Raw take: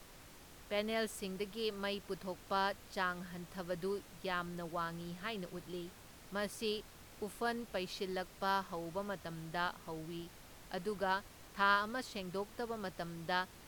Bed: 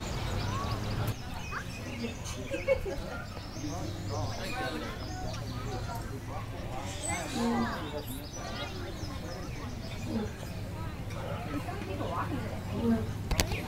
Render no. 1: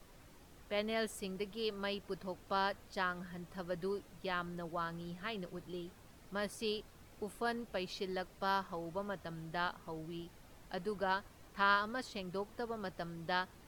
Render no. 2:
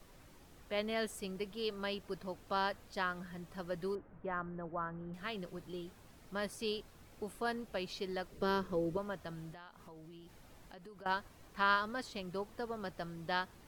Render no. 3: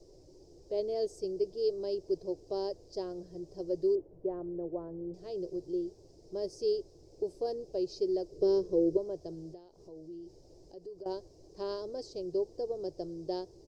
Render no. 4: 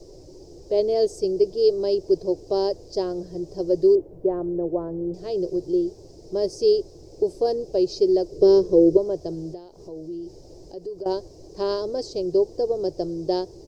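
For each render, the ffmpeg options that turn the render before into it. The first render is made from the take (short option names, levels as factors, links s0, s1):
-af "afftdn=nr=7:nf=-57"
-filter_complex "[0:a]asettb=1/sr,asplit=3[s0][s1][s2];[s0]atrim=end=3.954[s3];[s1]atrim=start=3.95:end=5.14,asetpts=PTS-STARTPTS,afade=t=in:d=0.004:c=qsin,afade=t=out:st=1.186:d=0.004:c=qsin,lowpass=f=1700:w=0.5412,lowpass=f=1700:w=1.3066[s4];[s2]atrim=start=5.136[s5];[s3][s4]acrossfade=d=0.004:c1=hsin:c2=qsin[s6];[s6][s5]acrossfade=d=0.004:c1=qsin:c2=hsin,asettb=1/sr,asplit=3[s7][s8][s9];[s7]atrim=end=8.324[s10];[s8]atrim=start=8.32:end=8.97,asetpts=PTS-STARTPTS,afade=t=in:d=0.004:c=qsin,afade=t=out:st=0.646:d=0.004:c=qsin,lowshelf=f=580:t=q:w=3:g=6.5[s11];[s9]atrim=start=8.966[s12];[s10][s11]acrossfade=d=0.004:c1=hsin:c2=qsin[s13];[s13][s12]acrossfade=d=0.004:c1=qsin:c2=hsin,asettb=1/sr,asplit=3[s14][s15][s16];[s14]atrim=end=9.534[s17];[s15]atrim=start=9.53:end=11.06,asetpts=PTS-STARTPTS,afade=t=in:d=0.004:c=qsin,afade=t=out:st=1.526:d=0.004:c=qsin,acompressor=threshold=0.00282:ratio=5:attack=3.2:release=140:knee=1:detection=peak[s18];[s16]atrim=start=11.056[s19];[s17][s18]acrossfade=d=0.004:c1=hsin:c2=qsin[s20];[s20][s19]acrossfade=d=0.004:c1=qsin:c2=hsin"
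-af "firequalizer=gain_entry='entry(150,0);entry(220,-11);entry(350,13);entry(1300,-27);entry(3400,-16);entry(5000,6);entry(11000,-20)':delay=0.05:min_phase=1"
-af "volume=3.98"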